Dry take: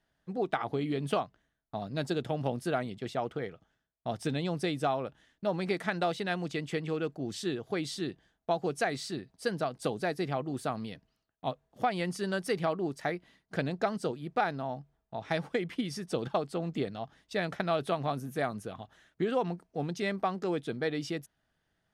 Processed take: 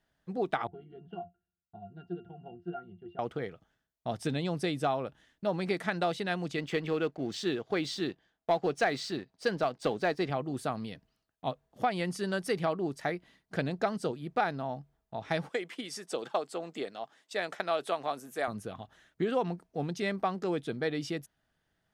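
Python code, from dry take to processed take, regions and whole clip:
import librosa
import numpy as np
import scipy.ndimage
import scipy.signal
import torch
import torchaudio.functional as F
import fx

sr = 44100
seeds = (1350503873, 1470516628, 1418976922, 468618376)

y = fx.chain(x, sr, fx.lowpass(hz=3400.0, slope=12),
    fx.octave_resonator(note='F', decay_s=0.15), at=(0.67, 3.19))
y = fx.chain(y, sr, fx.lowpass(hz=5600.0, slope=12),
    fx.low_shelf(hz=160.0, db=-10.0),
    fx.leveller(passes=1), at=(6.58, 10.3))
y = fx.chain(y, sr, fx.highpass(hz=400.0, slope=12),
    fx.peak_eq(hz=7600.0, db=7.0, octaves=0.31), at=(15.49, 18.48))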